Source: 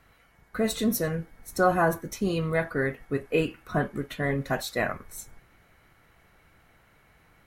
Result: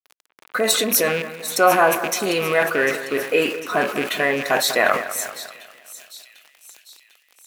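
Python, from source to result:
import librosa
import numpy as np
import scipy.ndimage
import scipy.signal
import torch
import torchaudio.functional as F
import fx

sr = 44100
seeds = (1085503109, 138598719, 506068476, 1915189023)

p1 = fx.rattle_buzz(x, sr, strikes_db=-35.0, level_db=-30.0)
p2 = fx.over_compress(p1, sr, threshold_db=-29.0, ratio=-0.5)
p3 = p1 + F.gain(torch.from_numpy(p2), -2.5).numpy()
p4 = np.where(np.abs(p3) >= 10.0 ** (-43.5 / 20.0), p3, 0.0)
p5 = scipy.signal.sosfilt(scipy.signal.butter(2, 430.0, 'highpass', fs=sr, output='sos'), p4)
p6 = fx.echo_split(p5, sr, split_hz=2900.0, low_ms=197, high_ms=749, feedback_pct=52, wet_db=-13)
p7 = fx.sustainer(p6, sr, db_per_s=100.0)
y = F.gain(torch.from_numpy(p7), 7.5).numpy()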